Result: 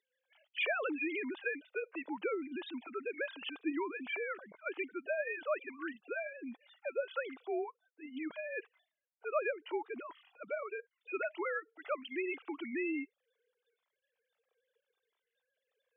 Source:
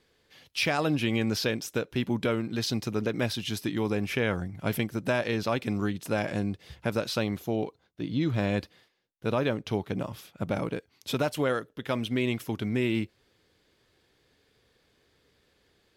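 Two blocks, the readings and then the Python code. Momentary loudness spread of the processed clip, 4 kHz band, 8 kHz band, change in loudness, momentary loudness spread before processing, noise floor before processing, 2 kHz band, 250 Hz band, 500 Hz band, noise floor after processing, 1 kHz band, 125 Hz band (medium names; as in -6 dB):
9 LU, -14.5 dB, under -35 dB, -9.0 dB, 7 LU, -69 dBFS, -4.5 dB, -12.5 dB, -7.5 dB, under -85 dBFS, -7.5 dB, under -40 dB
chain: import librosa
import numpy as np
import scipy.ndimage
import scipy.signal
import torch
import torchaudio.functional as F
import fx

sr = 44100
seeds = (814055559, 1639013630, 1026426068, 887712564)

y = fx.sine_speech(x, sr)
y = fx.noise_reduce_blind(y, sr, reduce_db=7)
y = scipy.signal.sosfilt(scipy.signal.butter(2, 400.0, 'highpass', fs=sr, output='sos'), y)
y = fx.dynamic_eq(y, sr, hz=530.0, q=3.4, threshold_db=-42.0, ratio=4.0, max_db=-5)
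y = fx.comb_cascade(y, sr, direction='falling', hz=0.79)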